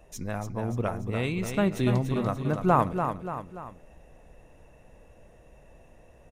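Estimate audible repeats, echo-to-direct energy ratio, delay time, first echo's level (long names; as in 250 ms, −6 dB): 3, −6.0 dB, 290 ms, −7.0 dB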